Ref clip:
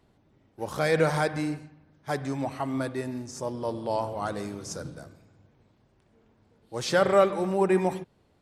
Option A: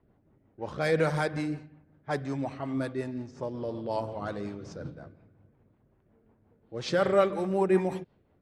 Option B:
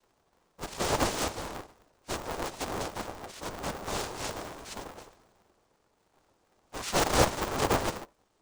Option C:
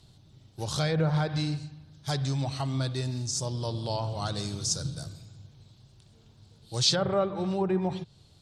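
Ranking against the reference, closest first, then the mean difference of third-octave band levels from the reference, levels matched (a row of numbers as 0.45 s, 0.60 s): A, C, B; 3.0 dB, 5.5 dB, 10.5 dB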